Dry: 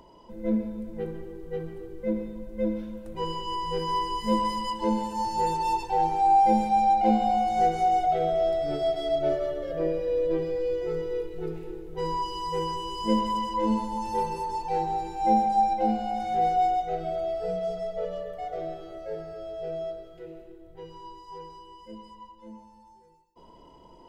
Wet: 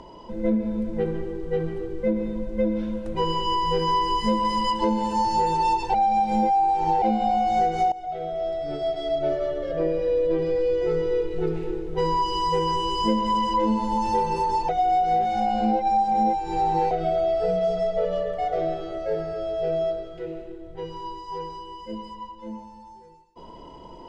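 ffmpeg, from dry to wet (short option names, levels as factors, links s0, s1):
-filter_complex "[0:a]asplit=6[s0][s1][s2][s3][s4][s5];[s0]atrim=end=5.942[s6];[s1]atrim=start=5.938:end=7.022,asetpts=PTS-STARTPTS,areverse[s7];[s2]atrim=start=7.018:end=7.92,asetpts=PTS-STARTPTS,afade=t=out:st=0.898:d=0.004:c=hsin:silence=0.112202[s8];[s3]atrim=start=7.92:end=14.692,asetpts=PTS-STARTPTS,afade=t=in:d=3.46:silence=0.112202[s9];[s4]atrim=start=14.688:end=16.912,asetpts=PTS-STARTPTS,areverse[s10];[s5]atrim=start=16.908[s11];[s6][s7]acrossfade=d=0.004:c1=hsin:c2=hsin[s12];[s8][s9]concat=n=2:v=0:a=1[s13];[s12][s13]acrossfade=d=0.004:c1=hsin:c2=hsin[s14];[s14][s10]acrossfade=d=0.004:c1=hsin:c2=hsin[s15];[s15][s11]acrossfade=d=0.004:c1=hsin:c2=hsin,lowpass=6500,acompressor=threshold=0.0398:ratio=6,volume=2.82"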